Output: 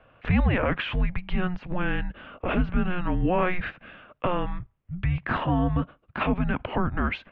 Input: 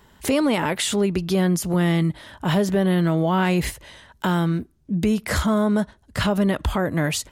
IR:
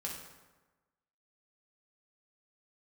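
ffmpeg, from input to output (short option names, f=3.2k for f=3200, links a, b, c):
-af "highpass=f=170:w=0.5412,highpass=f=170:w=1.3066,highpass=f=250:t=q:w=0.5412,highpass=f=250:t=q:w=1.307,lowpass=f=3.1k:t=q:w=0.5176,lowpass=f=3.1k:t=q:w=0.7071,lowpass=f=3.1k:t=q:w=1.932,afreqshift=-360"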